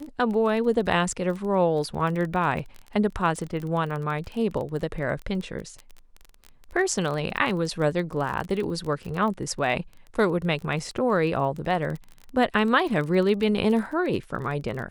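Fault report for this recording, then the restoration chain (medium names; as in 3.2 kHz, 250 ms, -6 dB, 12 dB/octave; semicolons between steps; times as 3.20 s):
crackle 25 per s -30 dBFS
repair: de-click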